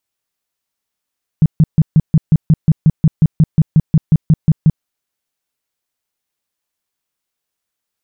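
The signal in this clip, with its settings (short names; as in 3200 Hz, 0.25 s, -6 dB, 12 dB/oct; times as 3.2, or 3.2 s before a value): tone bursts 157 Hz, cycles 6, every 0.18 s, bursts 19, -4.5 dBFS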